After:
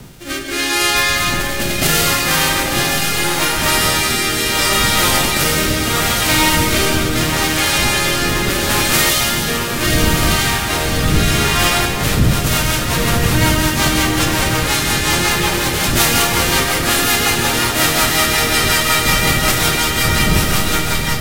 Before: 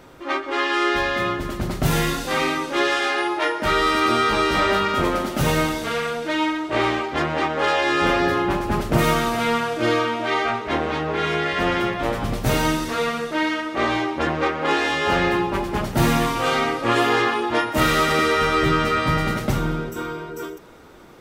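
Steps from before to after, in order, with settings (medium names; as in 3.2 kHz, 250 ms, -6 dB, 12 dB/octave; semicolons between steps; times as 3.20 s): formants flattened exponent 0.3; wind noise 160 Hz -28 dBFS; spectral selection erased 9.10–9.48 s, 270–2800 Hz; echo that smears into a reverb 1076 ms, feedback 49%, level -4.5 dB; rotary cabinet horn 0.75 Hz, later 5.5 Hz, at 11.58 s; in parallel at +1 dB: peak limiter -11.5 dBFS, peak gain reduction 9 dB; on the sum: reverberation RT60 2.9 s, pre-delay 45 ms, DRR 5.5 dB; level rider; trim -1 dB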